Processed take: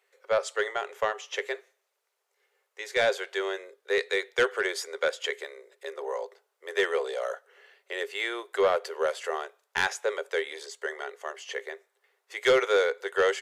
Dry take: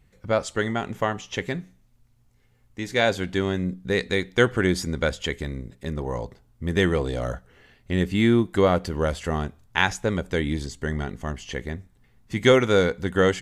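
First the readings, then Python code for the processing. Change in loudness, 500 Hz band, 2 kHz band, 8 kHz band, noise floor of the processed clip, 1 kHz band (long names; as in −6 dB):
−4.5 dB, −3.5 dB, −2.5 dB, −3.0 dB, −79 dBFS, −3.5 dB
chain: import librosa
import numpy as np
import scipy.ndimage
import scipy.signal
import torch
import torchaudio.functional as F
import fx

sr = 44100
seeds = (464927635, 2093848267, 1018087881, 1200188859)

y = scipy.signal.sosfilt(scipy.signal.cheby1(6, 3, 390.0, 'highpass', fs=sr, output='sos'), x)
y = 10.0 ** (-15.0 / 20.0) * np.tanh(y / 10.0 ** (-15.0 / 20.0))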